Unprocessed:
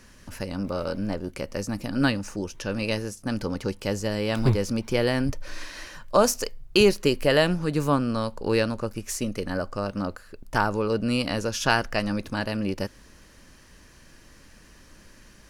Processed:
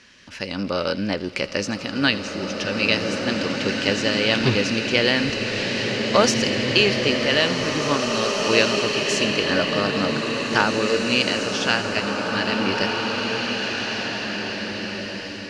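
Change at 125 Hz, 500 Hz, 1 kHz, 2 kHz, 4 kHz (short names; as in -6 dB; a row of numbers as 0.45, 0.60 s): -0.5, +3.5, +4.0, +9.5, +11.5 dB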